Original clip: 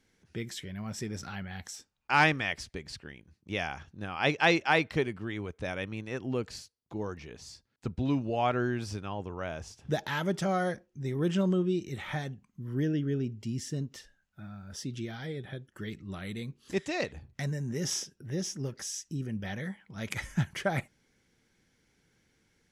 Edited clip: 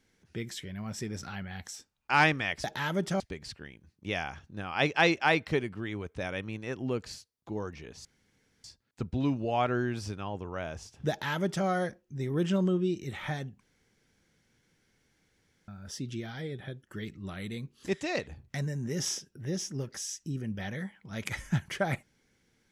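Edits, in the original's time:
7.49 s: insert room tone 0.59 s
9.95–10.51 s: copy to 2.64 s
12.45–14.53 s: room tone

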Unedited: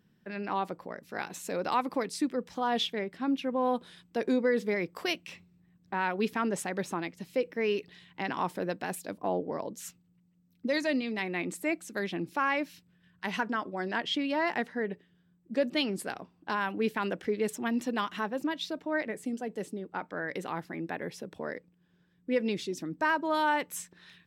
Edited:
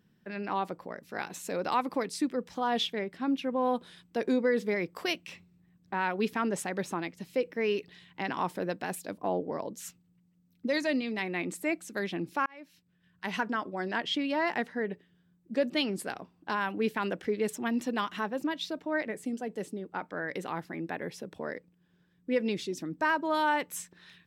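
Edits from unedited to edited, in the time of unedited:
12.46–13.37 s: fade in

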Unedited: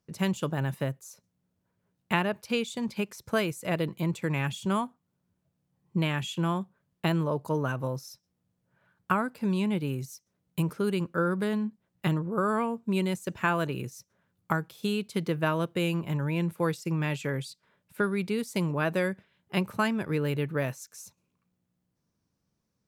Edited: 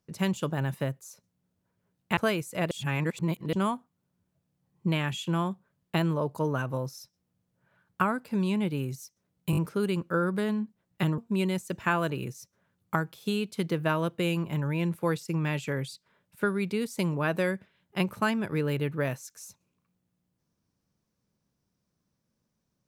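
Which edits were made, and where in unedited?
2.17–3.27 s: delete
3.81–4.63 s: reverse
10.61 s: stutter 0.02 s, 4 plays
12.22–12.75 s: delete

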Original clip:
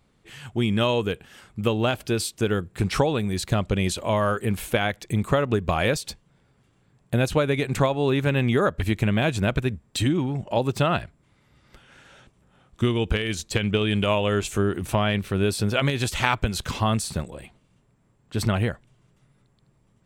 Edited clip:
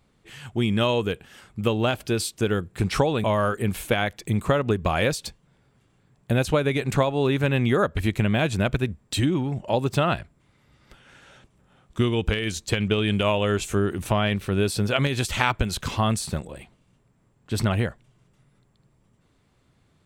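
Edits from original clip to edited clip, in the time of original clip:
3.24–4.07 s: delete

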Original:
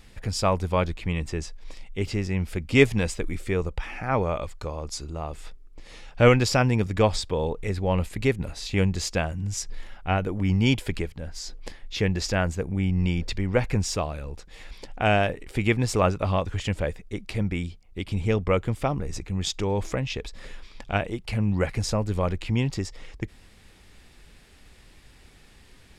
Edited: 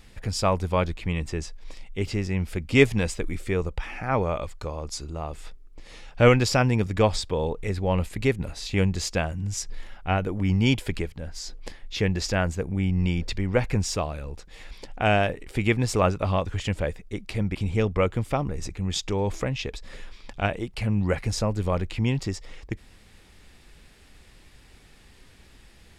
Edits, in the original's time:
17.55–18.06 s: delete

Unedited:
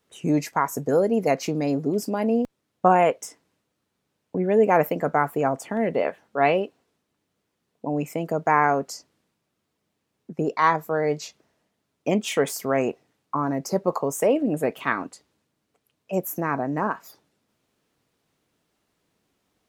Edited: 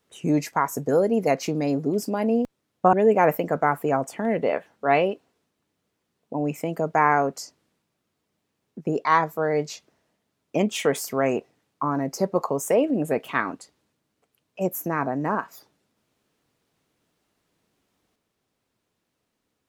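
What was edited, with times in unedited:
2.93–4.45 s: delete

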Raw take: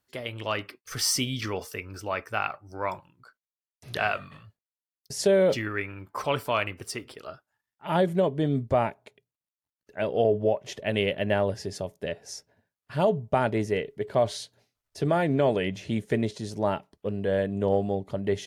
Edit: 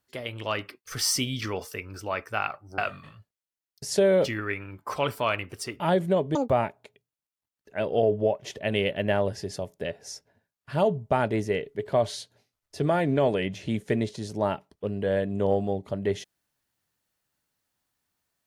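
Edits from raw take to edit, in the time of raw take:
2.78–4.06 s: delete
7.08–7.87 s: delete
8.42–8.72 s: speed 197%

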